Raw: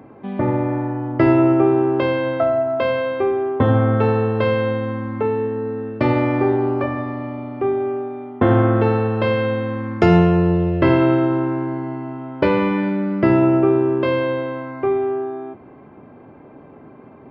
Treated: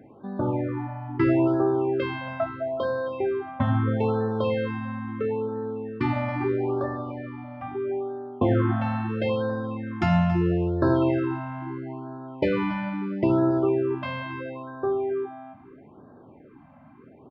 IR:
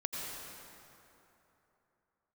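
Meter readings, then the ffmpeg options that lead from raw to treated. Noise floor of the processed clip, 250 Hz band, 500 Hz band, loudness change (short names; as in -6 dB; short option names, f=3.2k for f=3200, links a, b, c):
-51 dBFS, -7.5 dB, -8.0 dB, -7.5 dB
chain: -filter_complex "[0:a]asplit=2[a][b];[b]aecho=0:1:278:0.2[c];[a][c]amix=inputs=2:normalize=0,afftfilt=real='re*(1-between(b*sr/1024,370*pow(2600/370,0.5+0.5*sin(2*PI*0.76*pts/sr))/1.41,370*pow(2600/370,0.5+0.5*sin(2*PI*0.76*pts/sr))*1.41))':imag='im*(1-between(b*sr/1024,370*pow(2600/370,0.5+0.5*sin(2*PI*0.76*pts/sr))/1.41,370*pow(2600/370,0.5+0.5*sin(2*PI*0.76*pts/sr))*1.41))':win_size=1024:overlap=0.75,volume=-6.5dB"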